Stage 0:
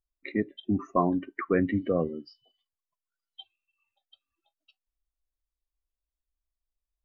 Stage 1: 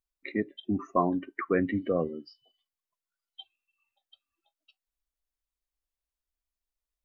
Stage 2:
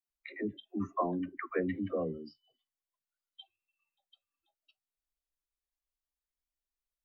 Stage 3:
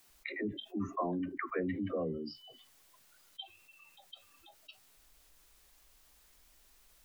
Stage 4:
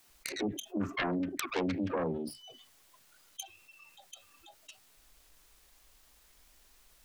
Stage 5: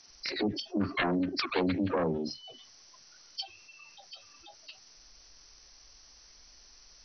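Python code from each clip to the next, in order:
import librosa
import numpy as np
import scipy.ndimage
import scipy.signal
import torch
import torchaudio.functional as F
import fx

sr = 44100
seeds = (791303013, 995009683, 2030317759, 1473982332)

y1 = fx.low_shelf(x, sr, hz=200.0, db=-5.5)
y2 = fx.dispersion(y1, sr, late='lows', ms=101.0, hz=380.0)
y2 = F.gain(torch.from_numpy(y2), -6.0).numpy()
y3 = fx.env_flatten(y2, sr, amount_pct=50)
y3 = F.gain(torch.from_numpy(y3), -4.0).numpy()
y4 = fx.self_delay(y3, sr, depth_ms=0.53)
y4 = F.gain(torch.from_numpy(y4), 3.5).numpy()
y5 = fx.freq_compress(y4, sr, knee_hz=4000.0, ratio=4.0)
y5 = F.gain(torch.from_numpy(y5), 3.5).numpy()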